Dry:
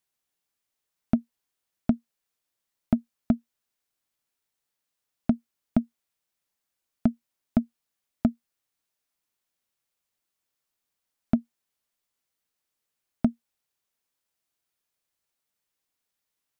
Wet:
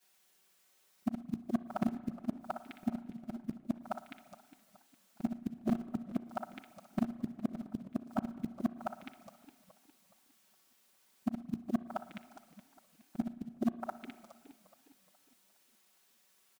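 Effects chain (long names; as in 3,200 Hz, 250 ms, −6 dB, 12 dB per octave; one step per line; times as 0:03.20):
every overlapping window played backwards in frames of 120 ms
low-shelf EQ 130 Hz −11.5 dB
comb filter 5.3 ms, depth 58%
on a send: echo through a band-pass that steps 206 ms, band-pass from 150 Hz, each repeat 1.4 octaves, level −2 dB
on the sum: gate with flip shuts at −31 dBFS, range −29 dB
in parallel at −4 dB: floating-point word with a short mantissa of 2 bits
on the sum: hard clipping −35 dBFS, distortion −10 dB
spring reverb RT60 1.7 s, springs 34/57 ms, chirp 30 ms, DRR 14 dB
feedback echo with a swinging delay time 415 ms, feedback 41%, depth 183 cents, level −17.5 dB
level +11.5 dB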